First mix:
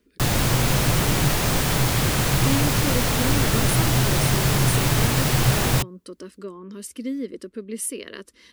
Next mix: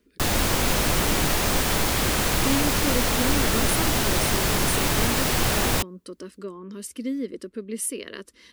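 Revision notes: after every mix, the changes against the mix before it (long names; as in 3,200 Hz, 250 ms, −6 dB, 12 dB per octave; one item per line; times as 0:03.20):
background: add parametric band 130 Hz −14 dB 0.49 octaves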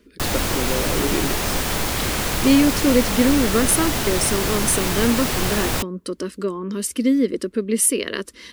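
speech +11.0 dB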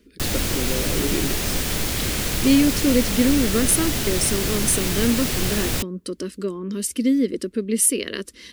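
master: add parametric band 950 Hz −8.5 dB 1.6 octaves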